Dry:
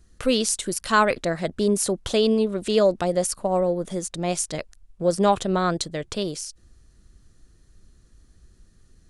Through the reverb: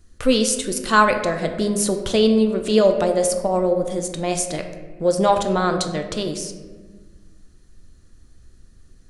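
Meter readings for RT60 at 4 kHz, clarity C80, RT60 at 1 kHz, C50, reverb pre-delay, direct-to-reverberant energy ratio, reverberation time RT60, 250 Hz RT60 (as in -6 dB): 0.80 s, 9.5 dB, 1.2 s, 8.0 dB, 3 ms, 5.0 dB, 1.4 s, 2.0 s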